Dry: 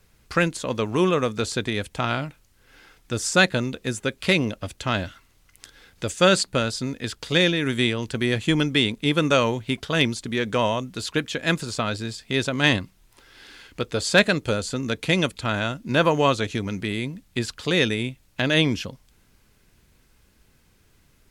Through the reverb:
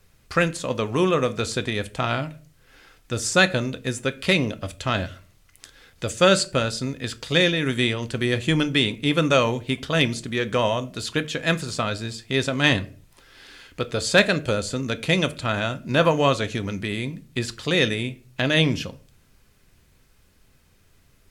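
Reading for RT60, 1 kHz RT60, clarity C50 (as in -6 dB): 0.40 s, 0.35 s, 19.5 dB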